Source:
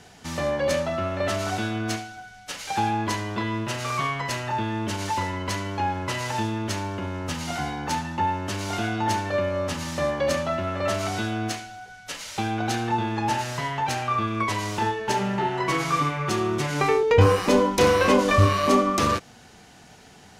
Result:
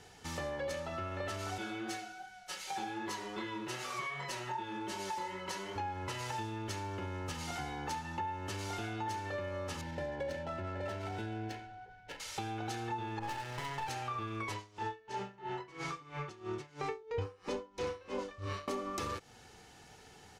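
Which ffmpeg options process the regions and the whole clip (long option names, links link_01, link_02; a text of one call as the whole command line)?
ffmpeg -i in.wav -filter_complex "[0:a]asettb=1/sr,asplit=3[link_01][link_02][link_03];[link_01]atrim=end=1.584[link_04];[link_02]atrim=start=1.58:end=5.76,asetpts=PTS-STARTPTS,afade=type=in:duration=0.004:curve=qsin,afade=type=out:start_time=4.176:duration=0.004:curve=qsin,lowshelf=frequency=110:gain=-9.5,flanger=delay=20:depth=5.1:speed=2.6,aecho=1:1:5.4:0.73,atrim=end_sample=184338[link_05];[link_03]atrim=start=5.756[link_06];[link_04][link_05]acrossfade=duration=0.004:curve1=hsin:curve2=qsin[link_07];[link_07][link_06]acrossfade=duration=0.004:curve1=qsin:curve2=hsin,asettb=1/sr,asplit=3[link_08][link_09][link_10];[link_08]atrim=end=9.814[link_11];[link_09]atrim=start=9.81:end=12.2,asetpts=PTS-STARTPTS,afade=type=in:duration=0.004:curve=qsin,afade=type=out:start_time=2.386:duration=0.004:curve=qsin,highshelf=frequency=2200:gain=-6,adynamicsmooth=sensitivity=6.5:basefreq=1900,asuperstop=centerf=1200:order=8:qfactor=5.1[link_12];[link_10]atrim=start=12.196[link_13];[link_11][link_12]acrossfade=duration=0.004:curve1=hsin:curve2=qsin[link_14];[link_14][link_13]acrossfade=duration=0.004:curve1=qsin:curve2=hsin,asettb=1/sr,asplit=3[link_15][link_16][link_17];[link_15]atrim=end=13.194[link_18];[link_16]atrim=start=13.19:end=13.89,asetpts=PTS-STARTPTS,afade=type=in:duration=0.004:curve=qsin,afade=type=out:start_time=0.696:duration=0.004:curve=qsin,adynamicsmooth=sensitivity=6:basefreq=940,aeval=exprs='clip(val(0),-1,0.0316)':channel_layout=same,adynamicequalizer=threshold=0.0112:dfrequency=1900:dqfactor=0.7:tfrequency=1900:tqfactor=0.7:attack=5:release=100:ratio=0.375:range=2:mode=boostabove:tftype=highshelf[link_19];[link_17]atrim=start=13.886[link_20];[link_18][link_19]acrossfade=duration=0.004:curve1=hsin:curve2=qsin[link_21];[link_21][link_20]acrossfade=duration=0.004:curve1=qsin:curve2=hsin,asettb=1/sr,asplit=3[link_22][link_23][link_24];[link_22]atrim=end=14.544[link_25];[link_23]atrim=start=14.54:end=18.68,asetpts=PTS-STARTPTS,afade=type=in:duration=0.004:curve=qsin,afade=type=out:start_time=4.136:duration=0.004:curve=qsin,lowpass=7100,aeval=exprs='val(0)*pow(10,-25*(0.5-0.5*cos(2*PI*3*n/s))/20)':channel_layout=same[link_26];[link_24]atrim=start=18.676[link_27];[link_25][link_26]acrossfade=duration=0.004:curve1=hsin:curve2=qsin[link_28];[link_28][link_27]acrossfade=duration=0.004:curve1=qsin:curve2=hsin,aecho=1:1:2.3:0.42,acompressor=threshold=-29dB:ratio=4,volume=-7.5dB" out.wav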